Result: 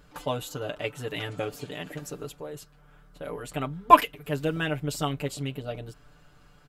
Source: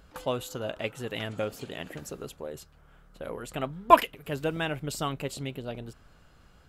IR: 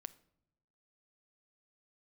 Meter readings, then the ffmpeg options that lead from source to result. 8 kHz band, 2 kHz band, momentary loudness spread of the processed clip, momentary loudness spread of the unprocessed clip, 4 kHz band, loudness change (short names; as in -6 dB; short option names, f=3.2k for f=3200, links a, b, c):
+1.5 dB, +1.5 dB, 21 LU, 20 LU, +1.0 dB, +2.0 dB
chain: -af "aecho=1:1:6.8:0.86,volume=-1dB"